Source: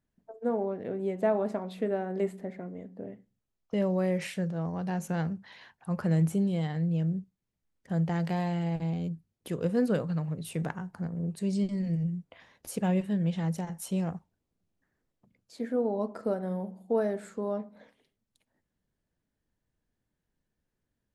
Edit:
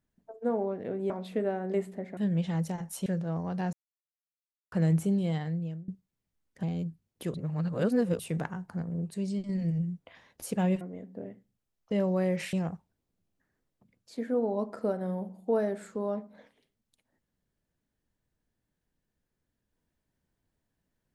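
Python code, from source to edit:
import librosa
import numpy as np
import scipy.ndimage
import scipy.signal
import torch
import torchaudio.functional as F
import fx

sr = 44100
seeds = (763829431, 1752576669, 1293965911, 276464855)

y = fx.edit(x, sr, fx.cut(start_s=1.1, length_s=0.46),
    fx.swap(start_s=2.63, length_s=1.72, other_s=13.06, other_length_s=0.89),
    fx.silence(start_s=5.02, length_s=0.99),
    fx.fade_out_to(start_s=6.66, length_s=0.51, floor_db=-23.5),
    fx.cut(start_s=7.92, length_s=0.96),
    fx.reverse_span(start_s=9.59, length_s=0.85),
    fx.fade_out_to(start_s=11.15, length_s=0.59, floor_db=-6.0), tone=tone)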